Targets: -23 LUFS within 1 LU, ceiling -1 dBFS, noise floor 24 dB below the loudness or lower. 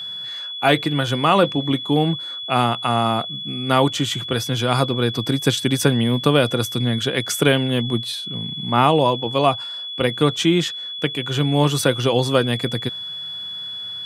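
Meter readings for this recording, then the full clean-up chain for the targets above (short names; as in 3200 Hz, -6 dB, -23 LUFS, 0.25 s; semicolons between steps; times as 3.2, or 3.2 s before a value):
ticks 39/s; steady tone 3400 Hz; tone level -28 dBFS; loudness -20.0 LUFS; peak -2.0 dBFS; loudness target -23.0 LUFS
-> de-click; notch 3400 Hz, Q 30; gain -3 dB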